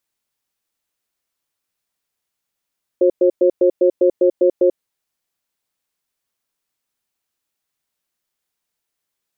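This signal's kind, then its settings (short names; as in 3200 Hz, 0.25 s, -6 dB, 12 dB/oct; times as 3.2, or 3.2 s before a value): cadence 360 Hz, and 537 Hz, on 0.09 s, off 0.11 s, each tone -12.5 dBFS 1.77 s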